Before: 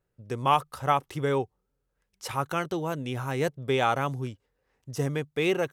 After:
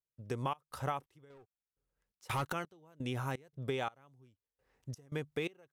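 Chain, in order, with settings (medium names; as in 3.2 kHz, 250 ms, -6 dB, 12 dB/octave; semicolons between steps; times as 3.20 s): 1.30–2.53 s: waveshaping leveller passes 3; compression 6:1, threshold -31 dBFS, peak gain reduction 14 dB; trance gate ".xx.xx....xx.xx." 85 bpm -24 dB; trim -2 dB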